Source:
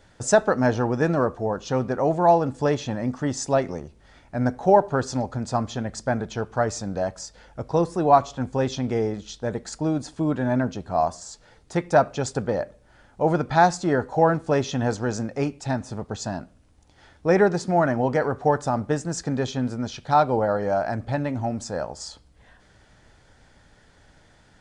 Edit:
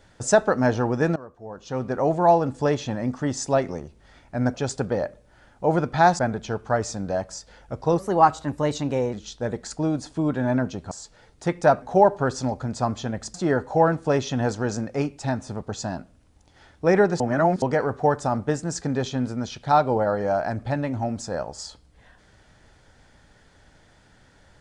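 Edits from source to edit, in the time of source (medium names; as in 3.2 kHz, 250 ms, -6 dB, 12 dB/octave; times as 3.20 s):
1.16–1.97 s: fade in quadratic, from -20 dB
4.54–6.06 s: swap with 12.11–13.76 s
7.86–9.15 s: speed 113%
10.93–11.20 s: delete
17.62–18.04 s: reverse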